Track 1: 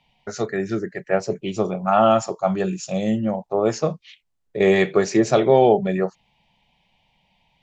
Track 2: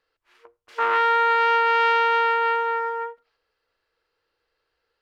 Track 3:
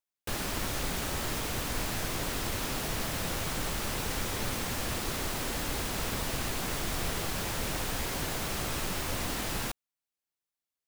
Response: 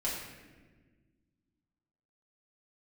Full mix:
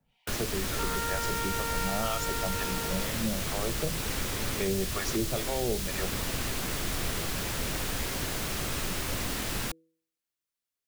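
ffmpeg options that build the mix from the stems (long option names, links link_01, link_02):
-filter_complex "[0:a]acrossover=split=670[link_01][link_02];[link_01]aeval=exprs='val(0)*(1-1/2+1/2*cos(2*PI*2.1*n/s))':channel_layout=same[link_03];[link_02]aeval=exprs='val(0)*(1-1/2-1/2*cos(2*PI*2.1*n/s))':channel_layout=same[link_04];[link_03][link_04]amix=inputs=2:normalize=0,volume=-2.5dB[link_05];[1:a]lowpass=2100,volume=-9.5dB[link_06];[2:a]volume=1.5dB[link_07];[link_05][link_06][link_07]amix=inputs=3:normalize=0,equalizer=frequency=830:width=1.5:gain=-4,bandreject=frequency=162.6:width_type=h:width=4,bandreject=frequency=325.2:width_type=h:width=4,bandreject=frequency=487.8:width_type=h:width=4,acrossover=split=130|3000[link_08][link_09][link_10];[link_09]acompressor=threshold=-30dB:ratio=4[link_11];[link_08][link_11][link_10]amix=inputs=3:normalize=0"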